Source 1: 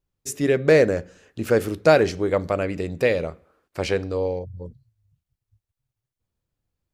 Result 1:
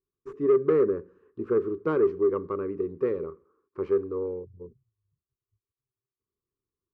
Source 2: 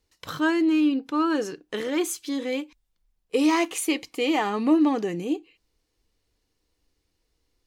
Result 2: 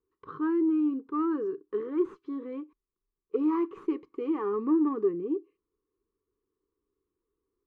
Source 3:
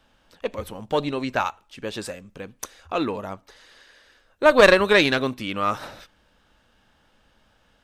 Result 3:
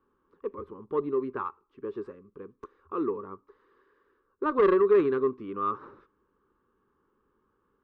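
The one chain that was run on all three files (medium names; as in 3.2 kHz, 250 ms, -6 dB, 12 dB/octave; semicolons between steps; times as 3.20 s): tracing distortion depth 0.07 ms; two resonant band-passes 670 Hz, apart 1.5 oct; tilt EQ -4 dB/octave; saturation -14 dBFS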